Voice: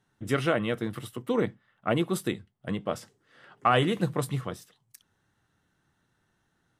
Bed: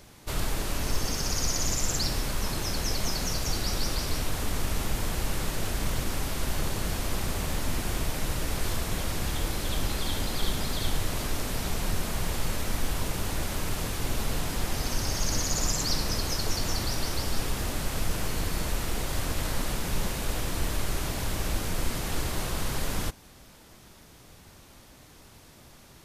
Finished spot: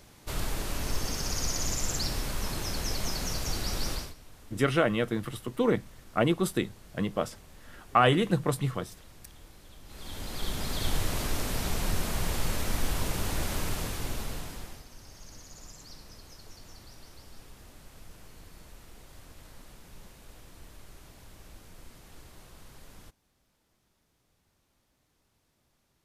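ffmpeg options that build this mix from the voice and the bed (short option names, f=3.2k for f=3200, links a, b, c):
-filter_complex "[0:a]adelay=4300,volume=1dB[a];[1:a]volume=19dB,afade=t=out:st=3.92:d=0.22:silence=0.105925,afade=t=in:st=9.85:d=1.11:silence=0.0794328,afade=t=out:st=13.57:d=1.28:silence=0.0944061[b];[a][b]amix=inputs=2:normalize=0"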